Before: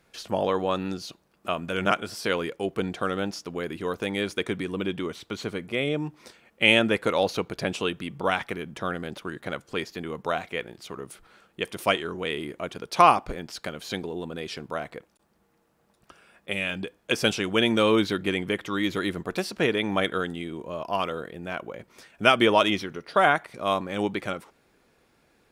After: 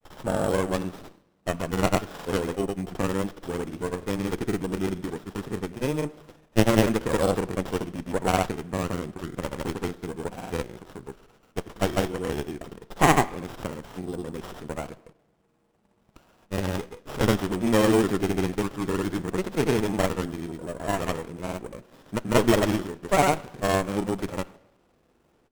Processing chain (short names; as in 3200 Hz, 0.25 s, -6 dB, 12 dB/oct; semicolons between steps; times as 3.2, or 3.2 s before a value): sample-rate reducer 8600 Hz, jitter 0%; grains; on a send at -17 dB: reverb RT60 0.90 s, pre-delay 24 ms; on the sum: running maximum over 17 samples; gain +1.5 dB